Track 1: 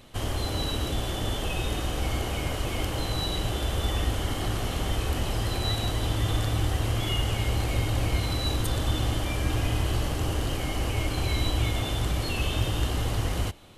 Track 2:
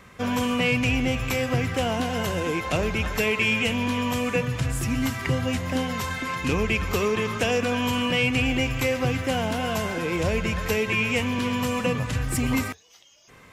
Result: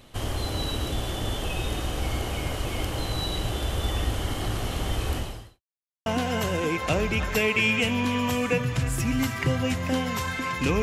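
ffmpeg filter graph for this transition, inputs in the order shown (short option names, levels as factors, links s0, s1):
-filter_complex "[0:a]apad=whole_dur=10.82,atrim=end=10.82,asplit=2[s0][s1];[s0]atrim=end=5.61,asetpts=PTS-STARTPTS,afade=t=out:st=5.15:d=0.46:c=qua[s2];[s1]atrim=start=5.61:end=6.06,asetpts=PTS-STARTPTS,volume=0[s3];[1:a]atrim=start=1.89:end=6.65,asetpts=PTS-STARTPTS,afade=t=in:d=0.004:c=hsin[s4];[s2][s3][s4]concat=n=3:v=0:a=1"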